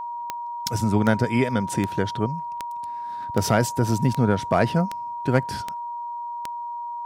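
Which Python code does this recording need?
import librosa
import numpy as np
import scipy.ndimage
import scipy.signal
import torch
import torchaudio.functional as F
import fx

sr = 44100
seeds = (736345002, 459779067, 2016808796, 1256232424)

y = fx.fix_declip(x, sr, threshold_db=-8.0)
y = fx.fix_declick_ar(y, sr, threshold=10.0)
y = fx.notch(y, sr, hz=950.0, q=30.0)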